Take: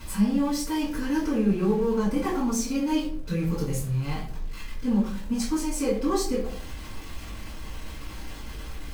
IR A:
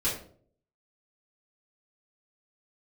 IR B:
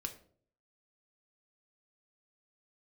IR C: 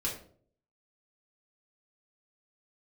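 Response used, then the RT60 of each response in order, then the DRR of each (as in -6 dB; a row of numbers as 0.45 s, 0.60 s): A; 0.55 s, 0.55 s, 0.55 s; -9.5 dB, 5.0 dB, -4.0 dB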